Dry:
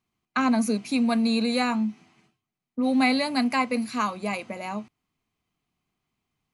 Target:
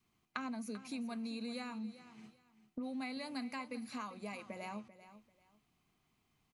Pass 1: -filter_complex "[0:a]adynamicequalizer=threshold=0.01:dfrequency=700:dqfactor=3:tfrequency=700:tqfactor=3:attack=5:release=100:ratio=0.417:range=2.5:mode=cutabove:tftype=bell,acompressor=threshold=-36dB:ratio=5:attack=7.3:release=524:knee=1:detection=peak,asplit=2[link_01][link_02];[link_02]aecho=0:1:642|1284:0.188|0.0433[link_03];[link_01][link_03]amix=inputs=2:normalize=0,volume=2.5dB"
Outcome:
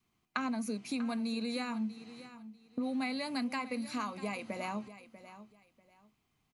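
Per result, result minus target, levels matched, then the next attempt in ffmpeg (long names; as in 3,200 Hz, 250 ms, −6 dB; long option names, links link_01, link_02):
echo 251 ms late; downward compressor: peak gain reduction −7 dB
-filter_complex "[0:a]adynamicequalizer=threshold=0.01:dfrequency=700:dqfactor=3:tfrequency=700:tqfactor=3:attack=5:release=100:ratio=0.417:range=2.5:mode=cutabove:tftype=bell,acompressor=threshold=-36dB:ratio=5:attack=7.3:release=524:knee=1:detection=peak,asplit=2[link_01][link_02];[link_02]aecho=0:1:391|782:0.188|0.0433[link_03];[link_01][link_03]amix=inputs=2:normalize=0,volume=2.5dB"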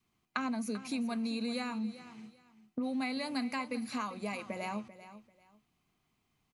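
downward compressor: peak gain reduction −7 dB
-filter_complex "[0:a]adynamicequalizer=threshold=0.01:dfrequency=700:dqfactor=3:tfrequency=700:tqfactor=3:attack=5:release=100:ratio=0.417:range=2.5:mode=cutabove:tftype=bell,acompressor=threshold=-44.5dB:ratio=5:attack=7.3:release=524:knee=1:detection=peak,asplit=2[link_01][link_02];[link_02]aecho=0:1:391|782:0.188|0.0433[link_03];[link_01][link_03]amix=inputs=2:normalize=0,volume=2.5dB"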